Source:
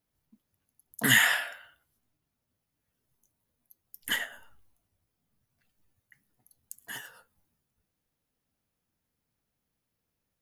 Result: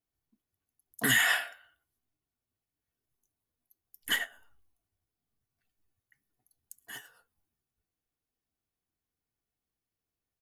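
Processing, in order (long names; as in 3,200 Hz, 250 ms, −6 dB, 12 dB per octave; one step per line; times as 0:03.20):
comb filter 2.7 ms, depth 35%
brickwall limiter −17 dBFS, peak gain reduction 8 dB
expander for the loud parts 1.5 to 1, over −47 dBFS
level +2.5 dB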